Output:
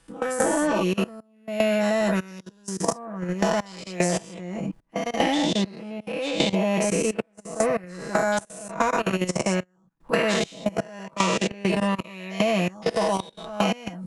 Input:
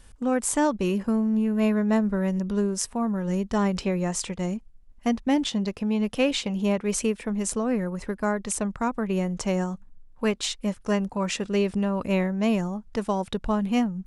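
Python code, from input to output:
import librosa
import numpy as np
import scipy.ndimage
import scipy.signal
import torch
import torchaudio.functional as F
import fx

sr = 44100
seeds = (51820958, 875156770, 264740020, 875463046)

y = fx.spec_dilate(x, sr, span_ms=240)
y = fx.highpass(y, sr, hz=180.0, slope=6)
y = fx.high_shelf(y, sr, hz=4100.0, db=-4.5)
y = y + 0.62 * np.pad(y, (int(6.1 * sr / 1000.0), 0))[:len(y)]
y = fx.dynamic_eq(y, sr, hz=650.0, q=6.8, threshold_db=-41.0, ratio=4.0, max_db=6)
y = fx.level_steps(y, sr, step_db=22)
y = fx.step_gate(y, sr, bpm=75, pattern='..xxxx..xxxx', floor_db=-24.0, edge_ms=4.5)
y = fx.band_squash(y, sr, depth_pct=100)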